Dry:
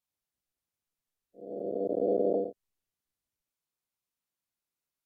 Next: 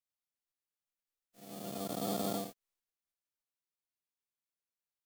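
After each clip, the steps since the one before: formants flattened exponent 0.3; trim -8 dB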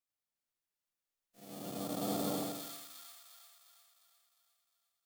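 two-band feedback delay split 1.3 kHz, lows 83 ms, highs 354 ms, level -3 dB; trim -1 dB

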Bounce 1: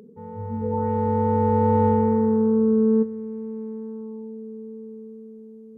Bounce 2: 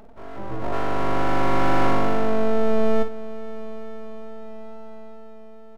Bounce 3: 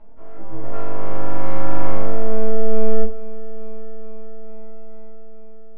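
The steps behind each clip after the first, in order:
full-wave rectifier; early reflections 24 ms -15 dB, 52 ms -9.5 dB; trim +1.5 dB
distance through air 350 m; simulated room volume 120 m³, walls furnished, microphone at 2.5 m; trim -11 dB

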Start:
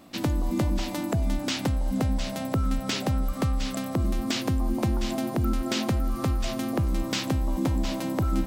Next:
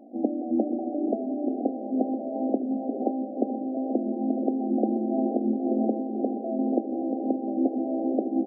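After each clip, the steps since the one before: frequency-shifting echo 478 ms, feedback 58%, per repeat +58 Hz, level -12.5 dB; FFT band-pass 210–810 Hz; trim +4 dB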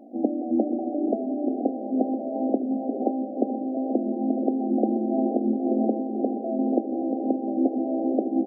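dynamic bell 170 Hz, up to -5 dB, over -47 dBFS, Q 4.8; trim +2 dB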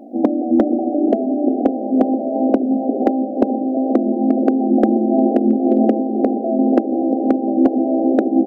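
overload inside the chain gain 13.5 dB; trim +9 dB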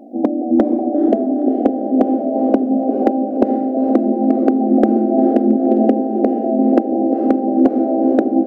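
level rider gain up to 5 dB; echo that smears into a reverb 471 ms, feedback 51%, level -12 dB; trim -1 dB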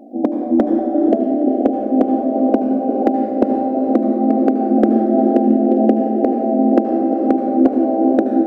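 reverberation RT60 2.1 s, pre-delay 70 ms, DRR 6.5 dB; trim -1 dB

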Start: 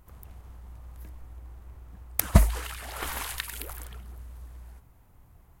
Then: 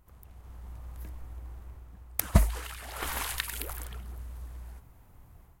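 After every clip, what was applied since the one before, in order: level rider gain up to 8 dB; trim -6 dB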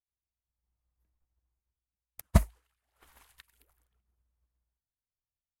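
upward expansion 2.5:1, over -46 dBFS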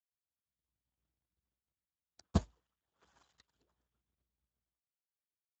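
peaking EQ 2.3 kHz -8.5 dB 0.67 oct; trim -3.5 dB; Speex 8 kbps 16 kHz

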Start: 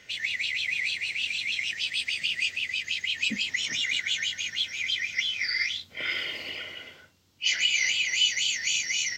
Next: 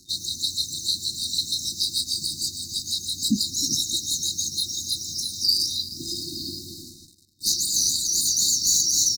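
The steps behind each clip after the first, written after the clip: frequency-shifting echo 309 ms, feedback 49%, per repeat +57 Hz, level -16 dB; waveshaping leveller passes 3; FFT band-reject 370–3700 Hz; trim +2.5 dB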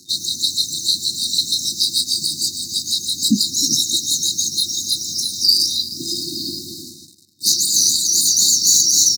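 high-pass 140 Hz 12 dB/octave; trim +7 dB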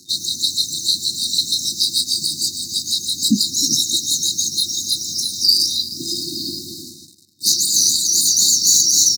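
no audible change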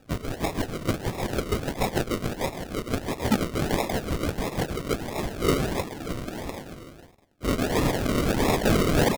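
rattle on loud lows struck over -29 dBFS, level -7 dBFS; decimation with a swept rate 41×, swing 60% 1.5 Hz; trim -7.5 dB

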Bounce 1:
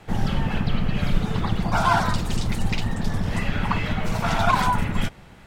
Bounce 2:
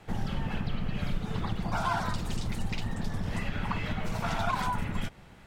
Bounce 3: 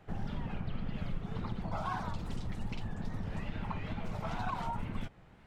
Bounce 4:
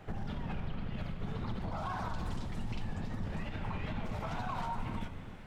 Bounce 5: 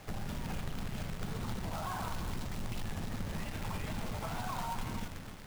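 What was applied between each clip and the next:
compression 2:1, threshold -23 dBFS, peak gain reduction 6.5 dB; trim -5.5 dB
treble shelf 3.8 kHz -11 dB; wow and flutter 140 cents; dynamic bell 1.7 kHz, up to -4 dB, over -48 dBFS, Q 2.3; trim -5.5 dB
peak limiter -32.5 dBFS, peak gain reduction 8.5 dB; compression, threshold -40 dBFS, peak gain reduction 5 dB; reverberation, pre-delay 3 ms, DRR 6.5 dB; trim +6.5 dB
companded quantiser 4-bit; trim -1 dB

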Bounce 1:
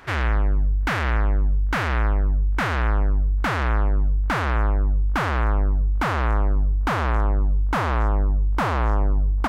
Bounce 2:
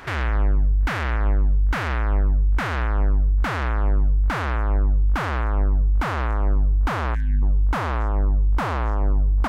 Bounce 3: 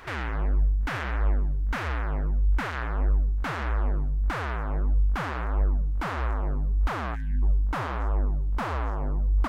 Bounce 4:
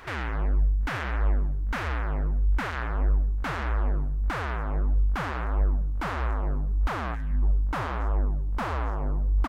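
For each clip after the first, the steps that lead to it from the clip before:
peak limiter -19.5 dBFS, peak gain reduction 8.5 dB; time-frequency box 7.15–7.43 s, 260–1500 Hz -30 dB; trim +5.5 dB
flange 1.6 Hz, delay 1.5 ms, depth 6.5 ms, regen +37%; bit crusher 12-bit; trim -1.5 dB
echo from a far wall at 180 m, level -19 dB

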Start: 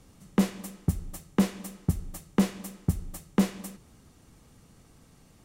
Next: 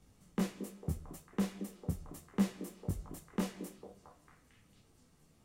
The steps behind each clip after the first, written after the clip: on a send: repeats whose band climbs or falls 225 ms, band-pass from 340 Hz, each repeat 0.7 oct, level -5 dB; on the sum: detune thickener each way 11 cents; trim -6 dB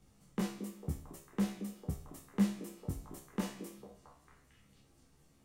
feedback comb 68 Hz, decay 0.48 s, harmonics all, mix 80%; trim +7.5 dB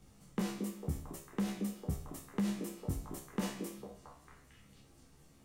peak limiter -31 dBFS, peak gain reduction 11.5 dB; trim +4.5 dB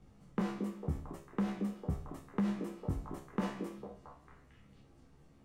low-pass 1.6 kHz 6 dB/octave; dynamic bell 1.2 kHz, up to +5 dB, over -57 dBFS, Q 0.93; trim +1 dB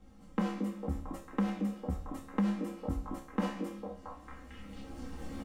recorder AGC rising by 11 dB/s; comb 3.8 ms, depth 83%

